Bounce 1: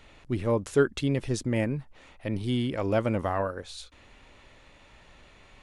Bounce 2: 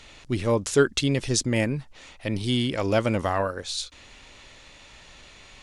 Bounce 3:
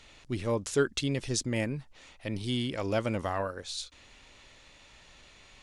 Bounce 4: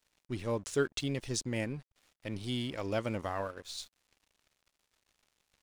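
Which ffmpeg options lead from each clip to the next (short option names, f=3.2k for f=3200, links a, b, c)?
-af "equalizer=f=5.8k:w=0.56:g=11.5,volume=2.5dB"
-af "aeval=exprs='0.473*(cos(1*acos(clip(val(0)/0.473,-1,1)))-cos(1*PI/2))+0.00299*(cos(5*acos(clip(val(0)/0.473,-1,1)))-cos(5*PI/2))':c=same,volume=-7dB"
-af "aeval=exprs='sgn(val(0))*max(abs(val(0))-0.00316,0)':c=same,volume=-3.5dB"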